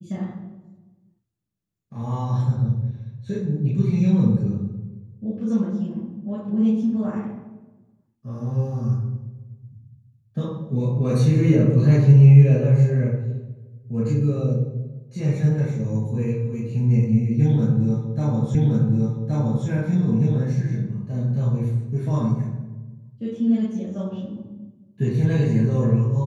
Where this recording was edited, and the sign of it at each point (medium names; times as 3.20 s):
18.55 s: repeat of the last 1.12 s